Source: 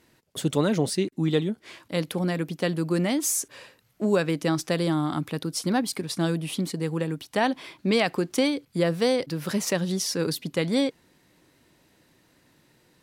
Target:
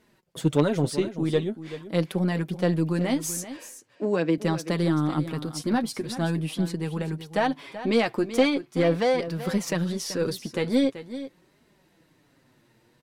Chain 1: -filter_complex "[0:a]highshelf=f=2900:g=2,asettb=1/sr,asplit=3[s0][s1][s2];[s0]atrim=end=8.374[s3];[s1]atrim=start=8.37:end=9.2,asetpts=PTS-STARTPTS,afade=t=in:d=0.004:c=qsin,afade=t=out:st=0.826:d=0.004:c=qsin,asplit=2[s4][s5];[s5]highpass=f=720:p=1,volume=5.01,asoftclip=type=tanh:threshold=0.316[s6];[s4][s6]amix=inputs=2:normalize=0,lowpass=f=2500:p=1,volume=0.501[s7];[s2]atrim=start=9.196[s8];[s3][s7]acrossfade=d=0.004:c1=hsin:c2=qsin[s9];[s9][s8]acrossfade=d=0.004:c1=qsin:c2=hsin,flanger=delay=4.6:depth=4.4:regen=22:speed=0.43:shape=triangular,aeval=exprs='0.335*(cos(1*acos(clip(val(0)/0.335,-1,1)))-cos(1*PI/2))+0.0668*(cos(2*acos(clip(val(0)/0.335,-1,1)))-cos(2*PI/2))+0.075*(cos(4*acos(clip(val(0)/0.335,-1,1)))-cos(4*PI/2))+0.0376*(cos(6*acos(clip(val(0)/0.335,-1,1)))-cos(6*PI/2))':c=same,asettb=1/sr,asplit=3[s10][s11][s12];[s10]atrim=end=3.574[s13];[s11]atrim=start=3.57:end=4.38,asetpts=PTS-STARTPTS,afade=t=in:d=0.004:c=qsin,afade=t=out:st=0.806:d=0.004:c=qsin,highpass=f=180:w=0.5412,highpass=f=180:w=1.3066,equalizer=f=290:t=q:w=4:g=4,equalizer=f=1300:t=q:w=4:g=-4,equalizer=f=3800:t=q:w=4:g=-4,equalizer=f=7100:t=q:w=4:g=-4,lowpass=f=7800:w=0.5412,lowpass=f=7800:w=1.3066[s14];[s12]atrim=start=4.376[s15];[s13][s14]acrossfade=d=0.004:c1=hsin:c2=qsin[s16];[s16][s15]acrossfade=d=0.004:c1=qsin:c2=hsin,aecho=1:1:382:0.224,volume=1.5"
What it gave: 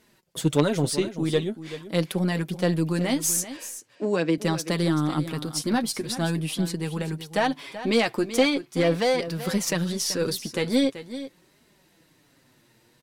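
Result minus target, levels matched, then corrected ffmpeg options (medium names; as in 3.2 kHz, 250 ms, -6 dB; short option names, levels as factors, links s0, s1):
8 kHz band +6.5 dB
-filter_complex "[0:a]highshelf=f=2900:g=-6,asettb=1/sr,asplit=3[s0][s1][s2];[s0]atrim=end=8.374[s3];[s1]atrim=start=8.37:end=9.2,asetpts=PTS-STARTPTS,afade=t=in:d=0.004:c=qsin,afade=t=out:st=0.826:d=0.004:c=qsin,asplit=2[s4][s5];[s5]highpass=f=720:p=1,volume=5.01,asoftclip=type=tanh:threshold=0.316[s6];[s4][s6]amix=inputs=2:normalize=0,lowpass=f=2500:p=1,volume=0.501[s7];[s2]atrim=start=9.196[s8];[s3][s7]acrossfade=d=0.004:c1=hsin:c2=qsin[s9];[s9][s8]acrossfade=d=0.004:c1=qsin:c2=hsin,flanger=delay=4.6:depth=4.4:regen=22:speed=0.43:shape=triangular,aeval=exprs='0.335*(cos(1*acos(clip(val(0)/0.335,-1,1)))-cos(1*PI/2))+0.0668*(cos(2*acos(clip(val(0)/0.335,-1,1)))-cos(2*PI/2))+0.075*(cos(4*acos(clip(val(0)/0.335,-1,1)))-cos(4*PI/2))+0.0376*(cos(6*acos(clip(val(0)/0.335,-1,1)))-cos(6*PI/2))':c=same,asettb=1/sr,asplit=3[s10][s11][s12];[s10]atrim=end=3.574[s13];[s11]atrim=start=3.57:end=4.38,asetpts=PTS-STARTPTS,afade=t=in:d=0.004:c=qsin,afade=t=out:st=0.806:d=0.004:c=qsin,highpass=f=180:w=0.5412,highpass=f=180:w=1.3066,equalizer=f=290:t=q:w=4:g=4,equalizer=f=1300:t=q:w=4:g=-4,equalizer=f=3800:t=q:w=4:g=-4,equalizer=f=7100:t=q:w=4:g=-4,lowpass=f=7800:w=0.5412,lowpass=f=7800:w=1.3066[s14];[s12]atrim=start=4.376[s15];[s13][s14]acrossfade=d=0.004:c1=hsin:c2=qsin[s16];[s16][s15]acrossfade=d=0.004:c1=qsin:c2=hsin,aecho=1:1:382:0.224,volume=1.5"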